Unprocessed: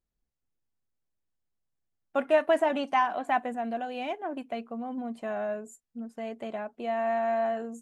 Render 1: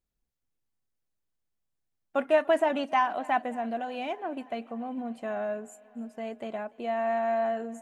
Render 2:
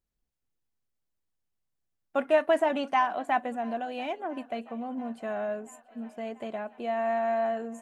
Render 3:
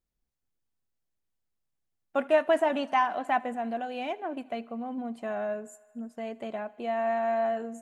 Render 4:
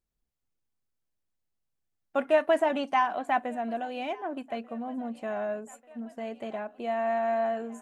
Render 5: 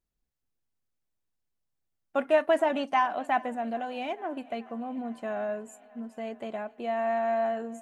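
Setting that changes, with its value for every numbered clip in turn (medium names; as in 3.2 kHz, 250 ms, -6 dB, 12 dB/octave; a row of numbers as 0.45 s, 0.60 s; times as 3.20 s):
thinning echo, time: 291 ms, 682 ms, 78 ms, 1189 ms, 432 ms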